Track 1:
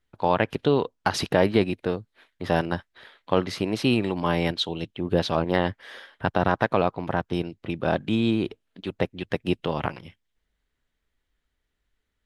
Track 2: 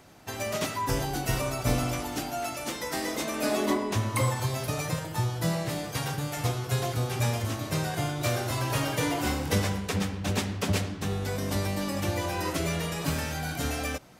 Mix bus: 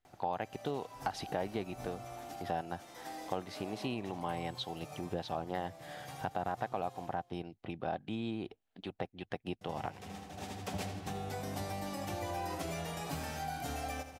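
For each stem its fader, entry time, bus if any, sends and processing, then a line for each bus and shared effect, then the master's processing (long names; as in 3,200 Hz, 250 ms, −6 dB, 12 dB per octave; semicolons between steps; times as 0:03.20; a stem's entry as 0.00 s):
−8.0 dB, 0.00 s, no send, no echo send, no processing
−5.5 dB, 0.05 s, muted 0:06.98–0:09.61, no send, echo send −13 dB, hum removal 50.28 Hz, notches 2; automatic ducking −22 dB, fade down 0.55 s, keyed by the first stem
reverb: not used
echo: repeating echo 80 ms, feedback 51%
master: parametric band 760 Hz +12 dB 0.31 octaves; downward compressor 2 to 1, threshold −40 dBFS, peak gain reduction 11 dB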